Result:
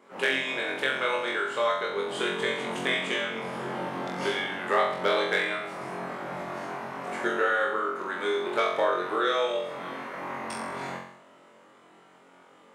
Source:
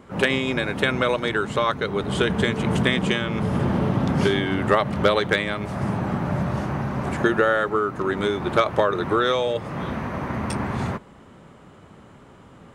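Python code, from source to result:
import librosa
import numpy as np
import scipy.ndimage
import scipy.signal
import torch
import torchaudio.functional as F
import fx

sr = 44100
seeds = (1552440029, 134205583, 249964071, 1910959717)

y = scipy.signal.sosfilt(scipy.signal.butter(2, 410.0, 'highpass', fs=sr, output='sos'), x)
y = fx.peak_eq(y, sr, hz=2100.0, db=3.0, octaves=0.28)
y = fx.room_flutter(y, sr, wall_m=3.8, rt60_s=0.66)
y = F.gain(torch.from_numpy(y), -8.0).numpy()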